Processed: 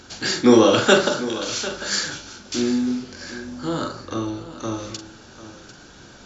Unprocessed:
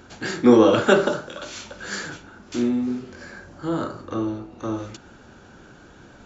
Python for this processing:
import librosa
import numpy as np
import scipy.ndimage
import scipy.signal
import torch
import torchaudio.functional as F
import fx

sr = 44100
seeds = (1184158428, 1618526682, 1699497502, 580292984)

y = fx.peak_eq(x, sr, hz=5100.0, db=12.5, octaves=1.5)
y = fx.doubler(y, sr, ms=44.0, db=-9.0)
y = y + 10.0 ** (-14.5 / 20.0) * np.pad(y, (int(747 * sr / 1000.0), 0))[:len(y)]